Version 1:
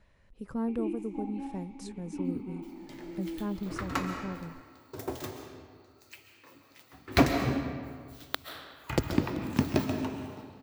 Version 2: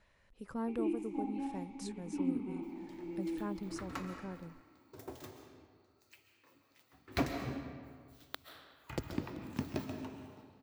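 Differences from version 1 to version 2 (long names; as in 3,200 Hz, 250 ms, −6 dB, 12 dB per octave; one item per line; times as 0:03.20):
speech: add low-shelf EQ 430 Hz −8.5 dB
second sound −11.0 dB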